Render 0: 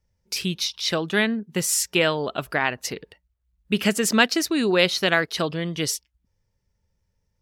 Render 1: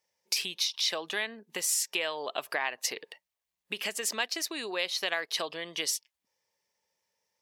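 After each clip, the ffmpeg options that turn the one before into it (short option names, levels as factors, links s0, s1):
-af "equalizer=f=1400:w=5.9:g=-9.5,acompressor=threshold=0.0316:ratio=6,highpass=640,volume=1.58"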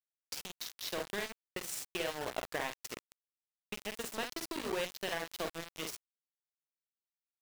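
-af "tiltshelf=f=710:g=8,aecho=1:1:49|61:0.562|0.251,aeval=exprs='val(0)*gte(abs(val(0)),0.0282)':c=same,volume=0.668"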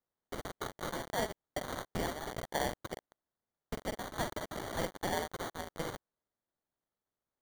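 -af "highpass=f=2000:t=q:w=3.5,acrusher=samples=17:mix=1:aa=0.000001"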